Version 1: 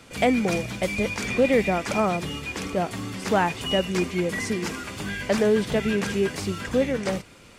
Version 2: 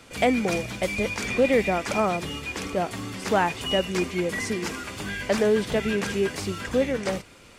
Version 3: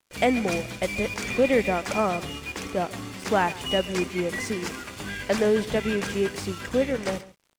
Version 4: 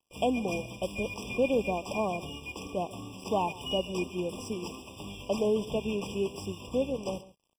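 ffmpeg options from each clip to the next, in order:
-af "equalizer=f=160:t=o:w=1.2:g=-3.5"
-af "aeval=exprs='sgn(val(0))*max(abs(val(0))-0.00668,0)':c=same,aecho=1:1:139:0.119"
-af "afftfilt=real='re*eq(mod(floor(b*sr/1024/1200),2),0)':imag='im*eq(mod(floor(b*sr/1024/1200),2),0)':win_size=1024:overlap=0.75,volume=-5.5dB"

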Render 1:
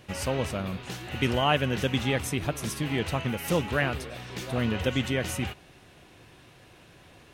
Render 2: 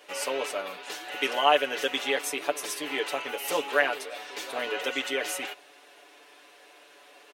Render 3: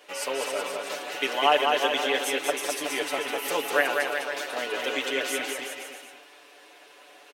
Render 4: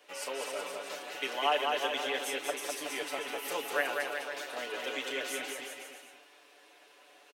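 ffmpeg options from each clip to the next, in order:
-af "highpass=f=390:w=0.5412,highpass=f=390:w=1.3066,aecho=1:1:6.9:0.86"
-af "aecho=1:1:200|370|514.5|637.3|741.7:0.631|0.398|0.251|0.158|0.1"
-filter_complex "[0:a]acrossover=split=400|720|2800[a][b][c][d];[a]asoftclip=type=tanh:threshold=-33dB[e];[d]asplit=2[f][g];[g]adelay=32,volume=-7.5dB[h];[f][h]amix=inputs=2:normalize=0[i];[e][b][c][i]amix=inputs=4:normalize=0,volume=-7.5dB"

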